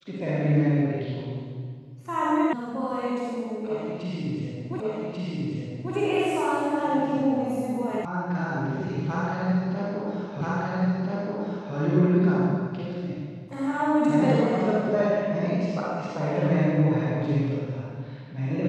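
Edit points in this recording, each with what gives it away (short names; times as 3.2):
2.53 sound cut off
4.8 repeat of the last 1.14 s
8.05 sound cut off
10.41 repeat of the last 1.33 s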